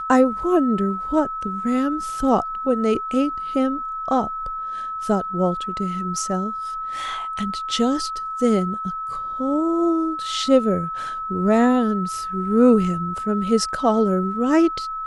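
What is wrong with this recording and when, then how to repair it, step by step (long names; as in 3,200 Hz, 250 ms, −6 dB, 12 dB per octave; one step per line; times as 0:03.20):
whistle 1,300 Hz −26 dBFS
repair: notch filter 1,300 Hz, Q 30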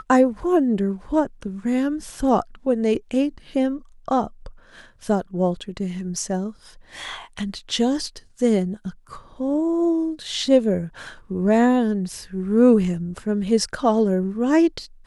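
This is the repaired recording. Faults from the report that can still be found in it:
none of them is left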